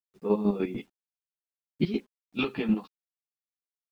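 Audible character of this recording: chopped level 6.7 Hz, depth 65%, duty 30%; a quantiser's noise floor 12-bit, dither none; a shimmering, thickened sound

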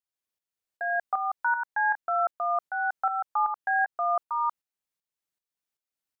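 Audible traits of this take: tremolo saw up 2.6 Hz, depth 65%

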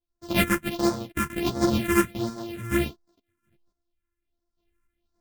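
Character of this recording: a buzz of ramps at a fixed pitch in blocks of 128 samples; phasing stages 4, 1.4 Hz, lowest notch 660–2700 Hz; random-step tremolo, depth 80%; a shimmering, thickened sound

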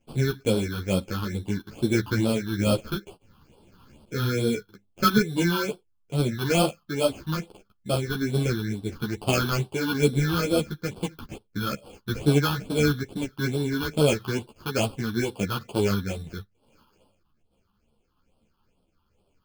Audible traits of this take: aliases and images of a low sample rate 1.9 kHz, jitter 0%; phasing stages 6, 2.3 Hz, lowest notch 550–1900 Hz; tremolo triangle 1.1 Hz, depth 30%; a shimmering, thickened sound

